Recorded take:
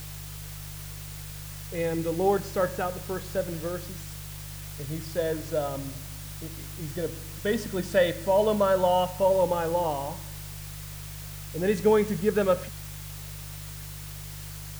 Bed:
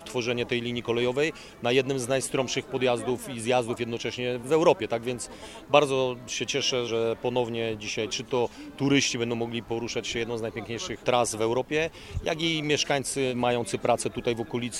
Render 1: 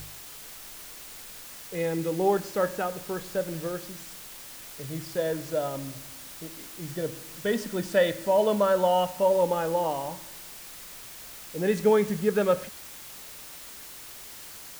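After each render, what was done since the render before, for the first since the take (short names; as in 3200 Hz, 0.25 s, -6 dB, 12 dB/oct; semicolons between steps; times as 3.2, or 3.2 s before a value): de-hum 50 Hz, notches 3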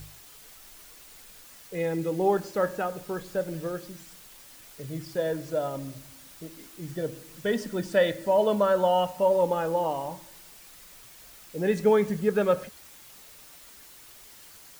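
denoiser 7 dB, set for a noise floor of -44 dBFS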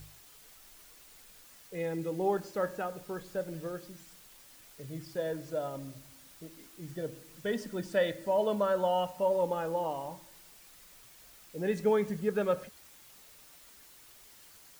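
gain -6 dB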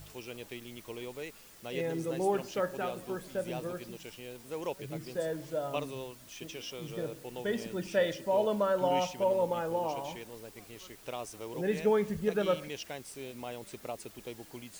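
add bed -16.5 dB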